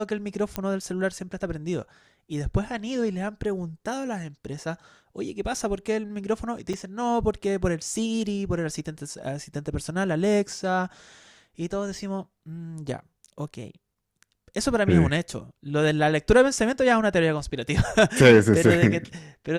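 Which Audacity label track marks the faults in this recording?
0.560000	0.560000	pop -12 dBFS
6.730000	6.740000	dropout 5.2 ms

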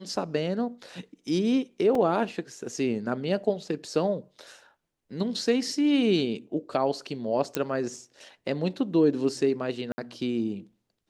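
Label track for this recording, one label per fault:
1.950000	1.950000	dropout 3.2 ms
7.550000	7.550000	pop -10 dBFS
9.920000	9.980000	dropout 60 ms

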